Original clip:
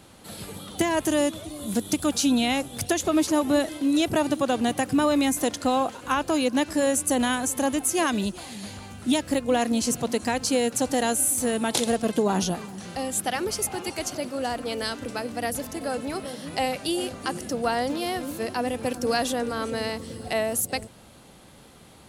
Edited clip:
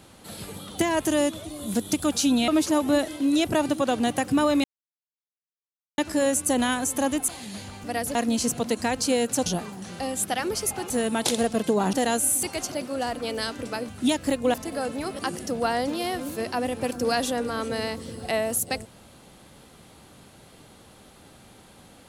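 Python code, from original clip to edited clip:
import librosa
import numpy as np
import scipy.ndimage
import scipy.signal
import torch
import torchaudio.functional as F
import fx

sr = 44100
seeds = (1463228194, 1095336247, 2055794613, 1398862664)

y = fx.edit(x, sr, fx.cut(start_s=2.48, length_s=0.61),
    fx.silence(start_s=5.25, length_s=1.34),
    fx.cut(start_s=7.89, length_s=0.48),
    fx.swap(start_s=8.93, length_s=0.65, other_s=15.32, other_length_s=0.31),
    fx.swap(start_s=10.89, length_s=0.5, other_s=12.42, other_length_s=1.44),
    fx.cut(start_s=16.28, length_s=0.93), tone=tone)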